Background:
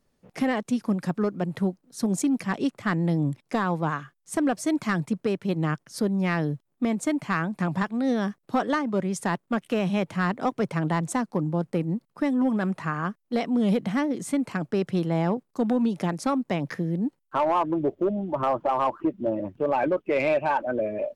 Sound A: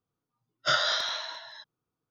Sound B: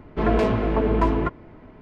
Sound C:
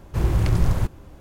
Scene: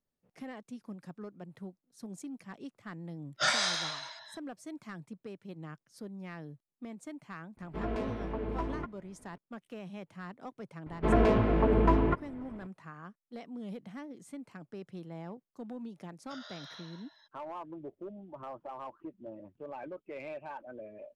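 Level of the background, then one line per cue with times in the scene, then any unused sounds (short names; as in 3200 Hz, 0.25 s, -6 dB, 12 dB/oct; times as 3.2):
background -19 dB
2.74 add A -5 dB + echoes that change speed 0.157 s, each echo +4 st, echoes 2
7.57 add B -15 dB
10.86 add B -4 dB + high shelf 4400 Hz -6 dB
15.64 add A -16.5 dB + compressor 10:1, threshold -28 dBFS
not used: C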